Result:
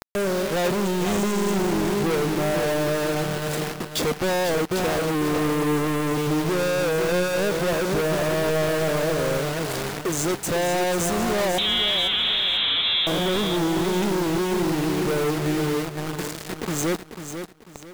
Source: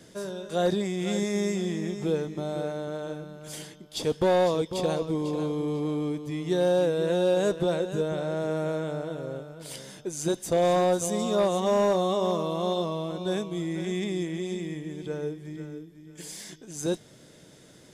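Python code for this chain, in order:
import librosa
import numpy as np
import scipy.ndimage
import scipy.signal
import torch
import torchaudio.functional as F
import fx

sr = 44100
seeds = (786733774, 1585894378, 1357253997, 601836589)

p1 = fx.wiener(x, sr, points=15)
p2 = fx.low_shelf(p1, sr, hz=110.0, db=-9.5)
p3 = fx.rider(p2, sr, range_db=4, speed_s=0.5)
p4 = p2 + (p3 * 10.0 ** (0.0 / 20.0))
p5 = np.sign(p4) * np.maximum(np.abs(p4) - 10.0 ** (-55.0 / 20.0), 0.0)
p6 = fx.quant_companded(p5, sr, bits=2)
p7 = 10.0 ** (-18.0 / 20.0) * np.tanh(p6 / 10.0 ** (-18.0 / 20.0))
p8 = fx.freq_invert(p7, sr, carrier_hz=3900, at=(11.58, 13.07))
p9 = p8 + fx.echo_feedback(p8, sr, ms=494, feedback_pct=31, wet_db=-9, dry=0)
y = p9 * 10.0 ** (3.0 / 20.0)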